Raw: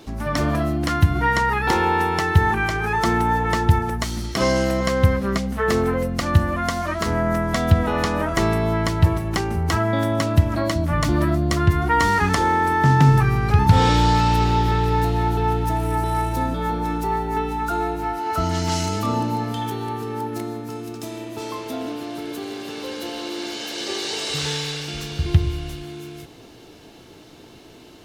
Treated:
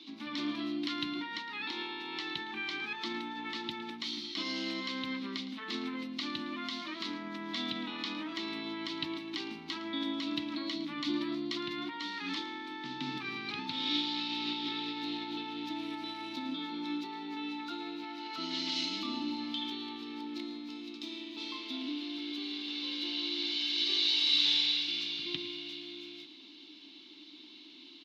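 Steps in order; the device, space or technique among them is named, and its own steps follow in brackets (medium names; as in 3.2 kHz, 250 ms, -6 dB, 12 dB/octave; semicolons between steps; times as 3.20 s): laptop speaker (high-pass 310 Hz 24 dB/octave; peaking EQ 1 kHz +11 dB 0.58 oct; peaking EQ 2.2 kHz +5.5 dB 0.32 oct; peak limiter -13 dBFS, peak gain reduction 11.5 dB); FFT filter 180 Hz 0 dB, 300 Hz +4 dB, 450 Hz -24 dB, 900 Hz -21 dB, 1.7 kHz -13 dB, 3.8 kHz +10 dB, 8.6 kHz -25 dB; delay 111 ms -15.5 dB; trim -5.5 dB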